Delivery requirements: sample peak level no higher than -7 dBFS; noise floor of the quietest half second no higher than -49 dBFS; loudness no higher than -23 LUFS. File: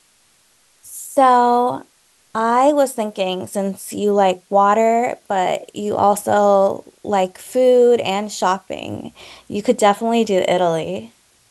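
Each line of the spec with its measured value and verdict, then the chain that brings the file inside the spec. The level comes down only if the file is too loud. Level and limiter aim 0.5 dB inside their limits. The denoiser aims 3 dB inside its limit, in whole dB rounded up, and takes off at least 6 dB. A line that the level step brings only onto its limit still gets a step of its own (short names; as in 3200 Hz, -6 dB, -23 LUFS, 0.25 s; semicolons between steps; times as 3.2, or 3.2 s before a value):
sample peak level -3.0 dBFS: fail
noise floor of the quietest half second -57 dBFS: OK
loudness -17.0 LUFS: fail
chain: gain -6.5 dB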